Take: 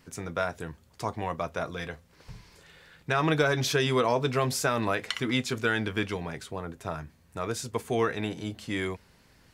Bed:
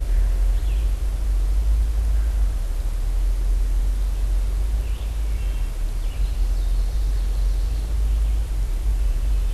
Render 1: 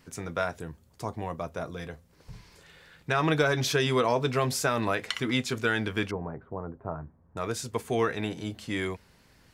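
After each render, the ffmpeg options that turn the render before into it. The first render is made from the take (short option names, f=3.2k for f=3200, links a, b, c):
-filter_complex "[0:a]asettb=1/sr,asplit=3[a][b][c];[a]atrim=end=0.604[d];[b]atrim=start=0.6:end=2.33,asetpts=PTS-STARTPTS,afade=t=in:d=0.004:c=qsin,afade=t=out:st=1.726:d=0.004:c=qsin,equalizer=f=2.3k:w=0.38:g=-6.5[e];[c]atrim=start=2.326[f];[d][e]acrossfade=d=0.004:c1=hsin:c2=qsin[g];[g][f]acrossfade=d=0.004:c1=qsin:c2=hsin,asettb=1/sr,asplit=3[h][i][j];[h]atrim=end=6.114[k];[i]atrim=start=6.11:end=7.37,asetpts=PTS-STARTPTS,afade=t=in:d=0.004:c=qsin,afade=t=out:st=1.256:d=0.004:c=qsin,lowpass=f=1.2k:w=0.5412,lowpass=f=1.2k:w=1.3066[l];[j]atrim=start=7.366[m];[k][l]acrossfade=d=0.004:c1=hsin:c2=qsin[n];[n][m]acrossfade=d=0.004:c1=qsin:c2=hsin"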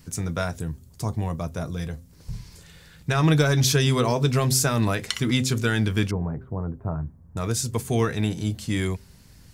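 -af "bass=f=250:g=13,treble=f=4k:g=11,bandreject=f=129.8:t=h:w=4,bandreject=f=259.6:t=h:w=4,bandreject=f=389.4:t=h:w=4,bandreject=f=519.2:t=h:w=4"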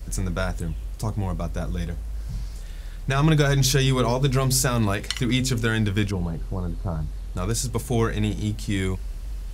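-filter_complex "[1:a]volume=-11.5dB[a];[0:a][a]amix=inputs=2:normalize=0"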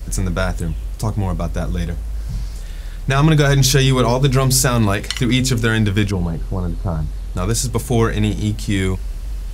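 -af "volume=6.5dB,alimiter=limit=-3dB:level=0:latency=1"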